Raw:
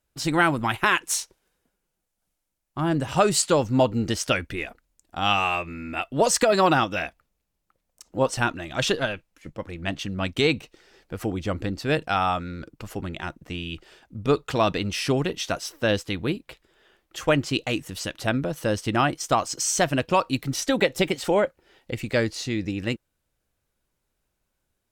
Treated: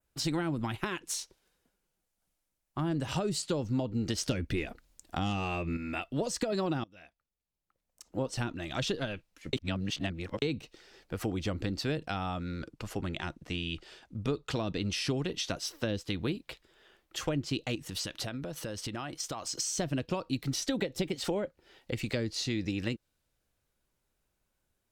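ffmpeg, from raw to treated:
ffmpeg -i in.wav -filter_complex "[0:a]asettb=1/sr,asplit=3[link_01][link_02][link_03];[link_01]atrim=end=4.184[link_04];[link_02]atrim=start=4.18:end=5.77,asetpts=PTS-STARTPTS,afade=type=in:duration=0.004:curve=qsin,afade=type=out:start_time=1.586:duration=0.004:curve=qsin,aeval=exprs='0.398*sin(PI/2*1.58*val(0)/0.398)':channel_layout=same[link_05];[link_03]atrim=start=5.766[link_06];[link_04][link_05]acrossfade=duration=0.004:curve1=hsin:curve2=qsin[link_07];[link_07][link_06]acrossfade=duration=0.004:curve1=qsin:curve2=hsin,asettb=1/sr,asplit=3[link_08][link_09][link_10];[link_08]atrim=end=12.594[link_11];[link_09]atrim=start=12.59:end=15.57,asetpts=PTS-STARTPTS,afade=type=in:duration=0.004:curve=qsin,afade=type=out:start_time=2.976:duration=0.004:curve=qsin,lowpass=12000[link_12];[link_10]atrim=start=15.566[link_13];[link_11][link_12]acrossfade=duration=0.004:curve1=hsin:curve2=qsin[link_14];[link_14][link_13]acrossfade=duration=0.004:curve1=qsin:curve2=hsin,asettb=1/sr,asplit=3[link_15][link_16][link_17];[link_15]atrim=end=17.754[link_18];[link_16]atrim=start=17.75:end=19.55,asetpts=PTS-STARTPTS,afade=type=in:duration=0.004:curve=qsin,afade=type=out:start_time=1.796:duration=0.004:curve=qsin,acompressor=threshold=-31dB:ratio=10:attack=3.2:release=140:knee=1:detection=peak[link_19];[link_17]atrim=start=19.546[link_20];[link_18][link_19]acrossfade=duration=0.004:curve1=hsin:curve2=qsin[link_21];[link_21][link_20]acrossfade=duration=0.004:curve1=qsin:curve2=hsin,asplit=4[link_22][link_23][link_24][link_25];[link_22]atrim=end=6.84,asetpts=PTS-STARTPTS,afade=type=out:start_time=6.836:duration=0.004:curve=hsin:silence=0.0707946[link_26];[link_23]atrim=start=6.84:end=9.532,asetpts=PTS-STARTPTS,afade=type=in:duration=1.38:curve=qua:silence=0.0707946[link_27];[link_24]atrim=start=9.528:end=10.422,asetpts=PTS-STARTPTS,areverse[link_28];[link_25]atrim=start=10.418[link_29];[link_26][link_27]concat=n=2:v=0:a=1[link_30];[link_30][link_28]acrossfade=duration=0.004:curve1=hsin:curve2=hsin[link_31];[link_31][link_29]acrossfade=duration=0.004:curve1=hsin:curve2=hsin,acrossover=split=440[link_32][link_33];[link_33]acompressor=threshold=-32dB:ratio=6[link_34];[link_32][link_34]amix=inputs=2:normalize=0,adynamicequalizer=threshold=0.00355:dfrequency=4300:dqfactor=1.1:tfrequency=4300:tqfactor=1.1:attack=5:release=100:ratio=0.375:range=3:mode=boostabove:tftype=bell,acompressor=threshold=-26dB:ratio=3,volume=-2.5dB" out.wav

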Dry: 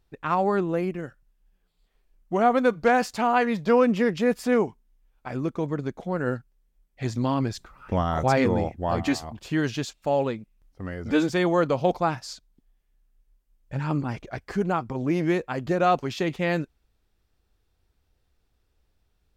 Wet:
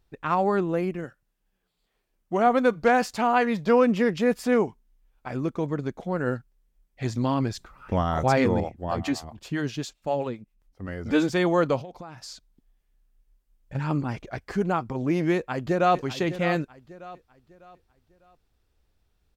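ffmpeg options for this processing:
ffmpeg -i in.wav -filter_complex "[0:a]asettb=1/sr,asplit=3[link_01][link_02][link_03];[link_01]atrim=end=1.044[link_04];[link_02]atrim=start=1.04:end=2.47,asetpts=PTS-STARTPTS,afade=type=in:duration=0.004:curve=qsin,afade=type=out:start_time=1.426:duration=0.004:curve=qsin,highpass=frequency=130:poles=1[link_05];[link_03]atrim=start=2.466[link_06];[link_04][link_05]acrossfade=duration=0.004:curve1=hsin:curve2=qsin[link_07];[link_07][link_06]acrossfade=duration=0.004:curve1=qsin:curve2=hsin,asettb=1/sr,asplit=3[link_08][link_09][link_10];[link_08]atrim=end=8.604[link_11];[link_09]atrim=start=8.6:end=10.88,asetpts=PTS-STARTPTS,afade=type=in:duration=0.004:curve=qsin,afade=type=out:start_time=2.276:duration=0.004:curve=qsin,acrossover=split=430[link_12][link_13];[link_12]aeval=exprs='val(0)*(1-0.7/2+0.7/2*cos(2*PI*7.6*n/s))':channel_layout=same[link_14];[link_13]aeval=exprs='val(0)*(1-0.7/2-0.7/2*cos(2*PI*7.6*n/s))':channel_layout=same[link_15];[link_14][link_15]amix=inputs=2:normalize=0[link_16];[link_10]atrim=start=10.876[link_17];[link_11][link_16]acrossfade=duration=0.004:curve1=hsin:curve2=qsin[link_18];[link_18][link_17]acrossfade=duration=0.004:curve1=qsin:curve2=hsin,asettb=1/sr,asplit=3[link_19][link_20][link_21];[link_19]atrim=end=11.814[link_22];[link_20]atrim=start=11.81:end=13.75,asetpts=PTS-STARTPTS,afade=type=in:duration=0.004:curve=qsin,afade=type=out:start_time=1.936:duration=0.004:curve=qsin,acompressor=threshold=-36dB:ratio=12:attack=3.2:release=140:knee=1:detection=peak[link_23];[link_21]atrim=start=13.746[link_24];[link_22][link_23]acrossfade=duration=0.004:curve1=hsin:curve2=qsin[link_25];[link_25][link_24]acrossfade=duration=0.004:curve1=qsin:curve2=hsin,asplit=2[link_26][link_27];[link_27]afade=type=in:start_time=15.34:duration=0.01,afade=type=out:start_time=15.98:duration=0.01,aecho=0:1:600|1200|1800|2400:0.266073|0.0931254|0.0325939|0.0114079[link_28];[link_26][link_28]amix=inputs=2:normalize=0" out.wav

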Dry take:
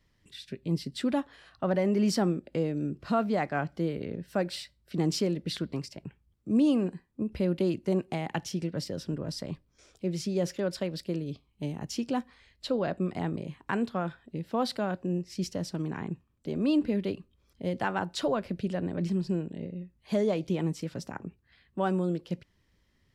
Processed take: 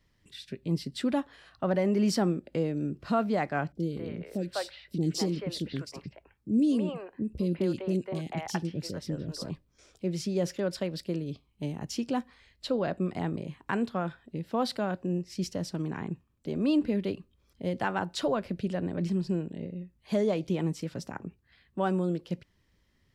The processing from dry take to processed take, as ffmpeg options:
ffmpeg -i in.wav -filter_complex "[0:a]asettb=1/sr,asplit=3[link_01][link_02][link_03];[link_01]atrim=end=3.724[link_04];[link_02]atrim=start=3.72:end=9.5,asetpts=PTS-STARTPTS,afade=type=in:duration=0.004:curve=qsin,afade=type=out:start_time=5.776:duration=0.004:curve=qsin,acrossover=split=490|2900[link_05][link_06][link_07];[link_07]adelay=30[link_08];[link_06]adelay=200[link_09];[link_05][link_09][link_08]amix=inputs=3:normalize=0,atrim=end_sample=254898[link_10];[link_03]atrim=start=9.496[link_11];[link_04][link_10]acrossfade=duration=0.004:curve1=hsin:curve2=qsin[link_12];[link_12][link_11]acrossfade=duration=0.004:curve1=qsin:curve2=hsin" out.wav

